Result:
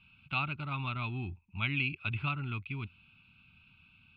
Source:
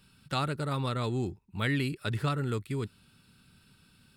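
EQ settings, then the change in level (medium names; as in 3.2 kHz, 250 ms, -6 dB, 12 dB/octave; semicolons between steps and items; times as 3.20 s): resonant low-pass 2.5 kHz, resonance Q 7.7; peaking EQ 86 Hz +7 dB 0.36 oct; static phaser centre 1.8 kHz, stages 6; -4.5 dB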